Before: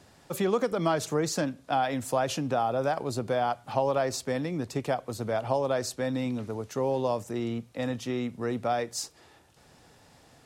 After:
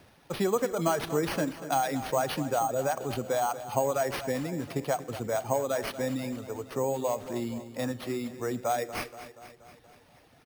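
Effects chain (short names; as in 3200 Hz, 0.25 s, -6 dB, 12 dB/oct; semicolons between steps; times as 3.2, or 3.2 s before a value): reverb removal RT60 1.6 s; feedback echo 0.238 s, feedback 59%, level -13.5 dB; on a send at -18 dB: reverb RT60 0.70 s, pre-delay 25 ms; on the sum: careless resampling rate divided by 6×, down none, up hold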